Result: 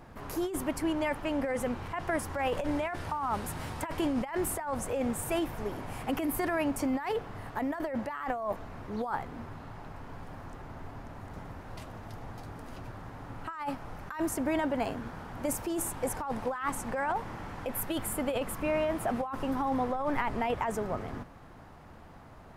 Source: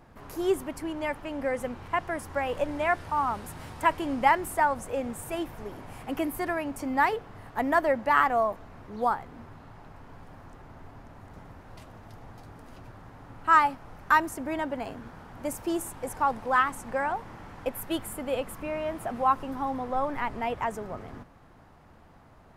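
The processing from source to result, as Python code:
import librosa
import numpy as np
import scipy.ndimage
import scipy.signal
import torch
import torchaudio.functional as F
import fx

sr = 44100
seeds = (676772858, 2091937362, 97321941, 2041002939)

y = fx.over_compress(x, sr, threshold_db=-31.0, ratio=-1.0)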